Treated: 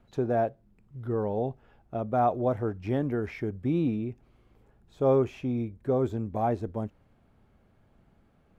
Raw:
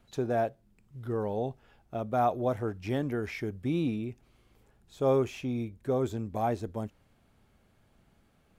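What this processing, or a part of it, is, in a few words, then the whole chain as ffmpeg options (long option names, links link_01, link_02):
through cloth: -af "highshelf=frequency=2700:gain=-14,volume=3dB"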